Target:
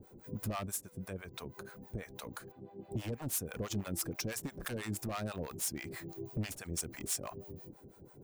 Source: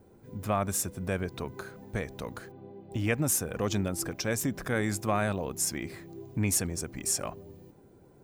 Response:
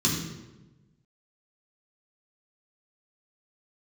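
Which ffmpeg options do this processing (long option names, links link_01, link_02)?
-filter_complex "[0:a]highshelf=frequency=10000:gain=11,acompressor=threshold=-37dB:ratio=2.5,asettb=1/sr,asplit=3[link_01][link_02][link_03];[link_01]atrim=end=0.664[link_04];[link_02]atrim=start=0.66:end=2.79,asetpts=PTS-STARTPTS,afade=type=in:duration=0.004:curve=qsin,afade=type=out:start_time=2.126:duration=0.004:curve=qsin,flanger=delay=0.8:depth=5.5:regen=74:speed=1.7:shape=sinusoidal[link_05];[link_03]atrim=start=2.786[link_06];[link_04][link_05]acrossfade=duration=0.004:curve1=hsin:curve2=qsin[link_07];[link_07][link_06]acrossfade=duration=0.004:curve1=qsin:curve2=hsin,aeval=exprs='0.0251*(abs(mod(val(0)/0.0251+3,4)-2)-1)':channel_layout=same,acrossover=split=590[link_08][link_09];[link_08]aeval=exprs='val(0)*(1-1/2+1/2*cos(2*PI*6.1*n/s))':channel_layout=same[link_10];[link_09]aeval=exprs='val(0)*(1-1/2-1/2*cos(2*PI*6.1*n/s))':channel_layout=same[link_11];[link_10][link_11]amix=inputs=2:normalize=0,volume=4.5dB"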